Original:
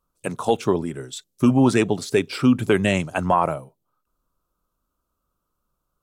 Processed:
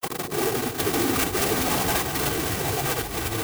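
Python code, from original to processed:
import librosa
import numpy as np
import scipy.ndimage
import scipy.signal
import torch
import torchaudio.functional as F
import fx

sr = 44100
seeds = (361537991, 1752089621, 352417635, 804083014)

y = fx.block_reorder(x, sr, ms=100.0, group=5)
y = fx.high_shelf(y, sr, hz=2200.0, db=-5.0)
y = fx.granulator(y, sr, seeds[0], grain_ms=100.0, per_s=20.0, spray_ms=100.0, spread_st=0)
y = fx.schmitt(y, sr, flips_db=-36.5)
y = scipy.signal.sosfilt(scipy.signal.butter(2, 160.0, 'highpass', fs=sr, output='sos'), y)
y = fx.high_shelf(y, sr, hz=4500.0, db=11.0)
y = fx.echo_split(y, sr, split_hz=510.0, low_ms=151, high_ms=347, feedback_pct=52, wet_db=-6.5)
y = fx.echo_pitch(y, sr, ms=641, semitones=-5, count=3, db_per_echo=-3.0)
y = fx.stretch_vocoder(y, sr, factor=0.57)
y = y + 0.59 * np.pad(y, (int(2.6 * sr / 1000.0), 0))[:len(y)]
y = fx.clock_jitter(y, sr, seeds[1], jitter_ms=0.057)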